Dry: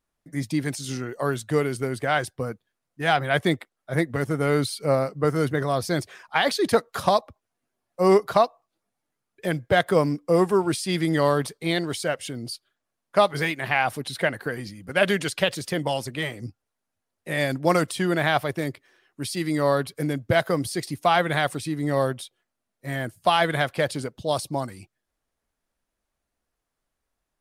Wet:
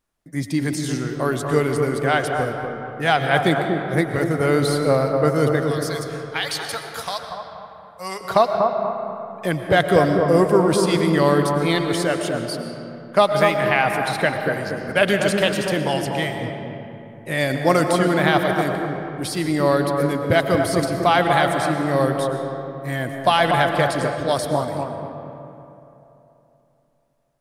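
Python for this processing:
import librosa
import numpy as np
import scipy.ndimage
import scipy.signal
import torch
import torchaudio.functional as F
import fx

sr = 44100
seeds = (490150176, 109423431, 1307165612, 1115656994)

p1 = fx.tone_stack(x, sr, knobs='10-0-10', at=(5.6, 8.21))
p2 = p1 + fx.echo_bbd(p1, sr, ms=241, stages=2048, feedback_pct=36, wet_db=-4.0, dry=0)
p3 = fx.rev_freeverb(p2, sr, rt60_s=3.2, hf_ratio=0.5, predelay_ms=75, drr_db=6.0)
y = p3 * librosa.db_to_amplitude(3.0)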